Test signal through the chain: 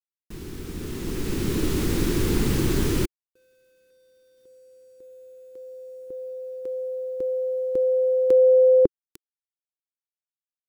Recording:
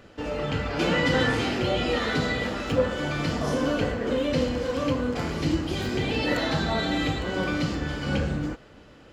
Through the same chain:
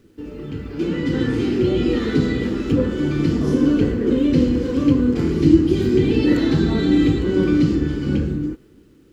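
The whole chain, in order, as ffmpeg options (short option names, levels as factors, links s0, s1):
-af "dynaudnorm=f=200:g=13:m=6.31,acrusher=bits=8:mix=0:aa=0.000001,lowshelf=f=480:t=q:w=3:g=9.5,volume=0.251"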